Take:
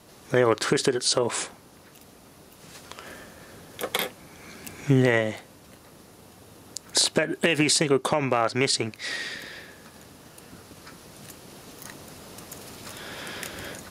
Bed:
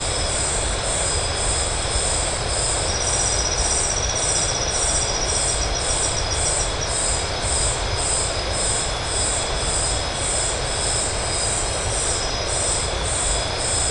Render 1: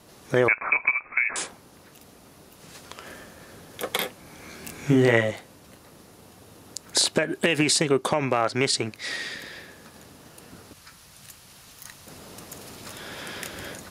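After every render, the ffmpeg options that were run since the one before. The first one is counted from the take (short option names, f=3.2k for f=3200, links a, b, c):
-filter_complex "[0:a]asettb=1/sr,asplit=3[a][b][c];[a]atrim=end=0.484[d];[b]atrim=start=0.48:end=1.36,asetpts=PTS-STARTPTS,afade=t=in:d=0.004:c=qsin,afade=t=out:st=0.876:d=0.004:c=qsin,lowpass=f=2.3k:t=q:w=0.5098,lowpass=f=2.3k:t=q:w=0.6013,lowpass=f=2.3k:t=q:w=0.9,lowpass=f=2.3k:t=q:w=2.563,afreqshift=-2700[e];[c]atrim=start=1.356[f];[d][e]acrossfade=d=0.004:c1=hsin:c2=qsin[g];[g][f]acrossfade=d=0.004:c1=qsin:c2=hsin,asettb=1/sr,asplit=3[h][i][j];[h]atrim=end=4.234[k];[i]atrim=start=4.23:end=5.31,asetpts=PTS-STARTPTS,afade=t=in:d=0.004:c=qsin,afade=t=out:st=1.076:d=0.004:c=qsin,asplit=2[l][m];[m]adelay=26,volume=-3.5dB[n];[l][n]amix=inputs=2:normalize=0,atrim=end_sample=47628[o];[j]atrim=start=5.306[p];[k][o]acrossfade=d=0.004:c1=hsin:c2=qsin[q];[q][p]acrossfade=d=0.004:c1=qsin:c2=hsin,asettb=1/sr,asplit=3[r][s][t];[r]atrim=end=10.734[u];[s]atrim=start=10.73:end=12.07,asetpts=PTS-STARTPTS,afade=t=in:d=0.004:c=qsin,afade=t=out:st=1.336:d=0.004:c=qsin,equalizer=f=350:w=0.57:g=-14[v];[t]atrim=start=12.066[w];[u][v]acrossfade=d=0.004:c1=hsin:c2=qsin[x];[x][w]acrossfade=d=0.004:c1=qsin:c2=hsin"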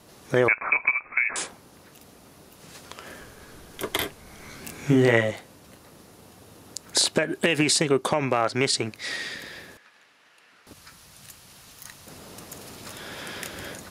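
-filter_complex "[0:a]asettb=1/sr,asplit=3[a][b][c];[a]atrim=end=3.204[d];[b]atrim=start=3.2:end=4.61,asetpts=PTS-STARTPTS,afade=t=in:d=0.004:c=qsin,afade=t=out:st=1.406:d=0.004:c=qsin,afreqshift=-100[e];[c]atrim=start=4.606[f];[d][e]acrossfade=d=0.004:c1=hsin:c2=qsin[g];[g][f]acrossfade=d=0.004:c1=qsin:c2=hsin,asettb=1/sr,asplit=3[h][i][j];[h]atrim=end=9.774[k];[i]atrim=start=9.77:end=10.67,asetpts=PTS-STARTPTS,afade=t=in:d=0.004:c=qsin,afade=t=out:st=0.896:d=0.004:c=qsin,bandpass=f=2.1k:t=q:w=1.4[l];[j]atrim=start=10.666[m];[k][l]acrossfade=d=0.004:c1=hsin:c2=qsin[n];[n][m]acrossfade=d=0.004:c1=qsin:c2=hsin"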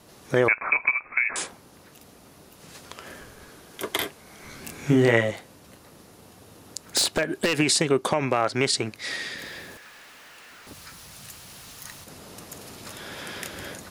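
-filter_complex "[0:a]asettb=1/sr,asplit=3[a][b][c];[a]atrim=end=3.494[d];[b]atrim=start=3.49:end=4.44,asetpts=PTS-STARTPTS,afade=t=in:d=0.004:c=qsin,afade=t=out:st=0.946:d=0.004:c=qsin,highpass=f=170:p=1[e];[c]atrim=start=4.436[f];[d][e]acrossfade=d=0.004:c1=hsin:c2=qsin[g];[g][f]acrossfade=d=0.004:c1=qsin:c2=hsin,asettb=1/sr,asplit=3[h][i][j];[h]atrim=end=6.844[k];[i]atrim=start=6.84:end=7.56,asetpts=PTS-STARTPTS,afade=t=in:d=0.004:c=qsin,afade=t=out:st=0.716:d=0.004:c=qsin,aeval=exprs='0.188*(abs(mod(val(0)/0.188+3,4)-2)-1)':c=same[l];[j]atrim=start=7.556[m];[k][l]acrossfade=d=0.004:c1=hsin:c2=qsin[n];[n][m]acrossfade=d=0.004:c1=qsin:c2=hsin,asettb=1/sr,asplit=3[o][p][q];[o]atrim=end=9.384[r];[p]atrim=start=9.38:end=12.04,asetpts=PTS-STARTPTS,afade=t=in:d=0.004:c=qsin,afade=t=out:st=2.656:d=0.004:c=qsin,aeval=exprs='val(0)+0.5*0.00562*sgn(val(0))':c=same[s];[q]atrim=start=12.036[t];[r][s]acrossfade=d=0.004:c1=hsin:c2=qsin[u];[u][t]acrossfade=d=0.004:c1=qsin:c2=hsin"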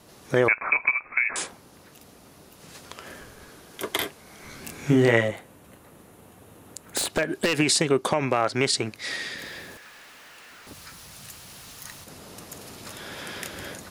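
-filter_complex "[0:a]asettb=1/sr,asplit=3[a][b][c];[a]atrim=end=5.284[d];[b]atrim=start=5.28:end=7.1,asetpts=PTS-STARTPTS,afade=t=in:d=0.004:c=qsin,afade=t=out:st=1.816:d=0.004:c=qsin,equalizer=f=5k:t=o:w=0.84:g=-10.5[e];[c]atrim=start=7.096[f];[d][e]acrossfade=d=0.004:c1=hsin:c2=qsin[g];[g][f]acrossfade=d=0.004:c1=qsin:c2=hsin"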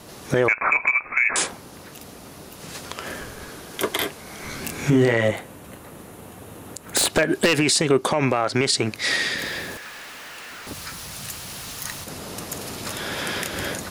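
-filter_complex "[0:a]asplit=2[a][b];[b]acontrast=72,volume=-1dB[c];[a][c]amix=inputs=2:normalize=0,alimiter=limit=-9.5dB:level=0:latency=1:release=132"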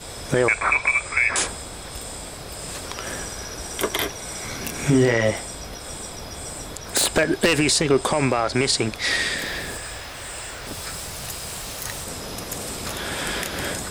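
-filter_complex "[1:a]volume=-14dB[a];[0:a][a]amix=inputs=2:normalize=0"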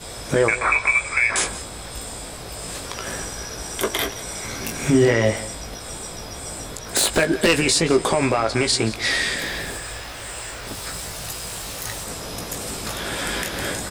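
-filter_complex "[0:a]asplit=2[a][b];[b]adelay=18,volume=-6.5dB[c];[a][c]amix=inputs=2:normalize=0,aecho=1:1:174:0.141"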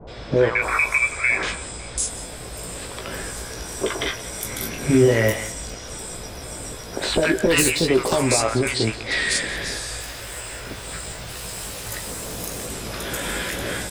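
-filter_complex "[0:a]asplit=2[a][b];[b]adelay=16,volume=-12dB[c];[a][c]amix=inputs=2:normalize=0,acrossover=split=960|4700[d][e][f];[e]adelay=70[g];[f]adelay=620[h];[d][g][h]amix=inputs=3:normalize=0"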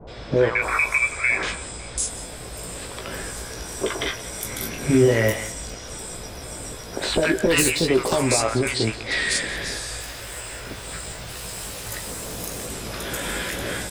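-af "volume=-1dB"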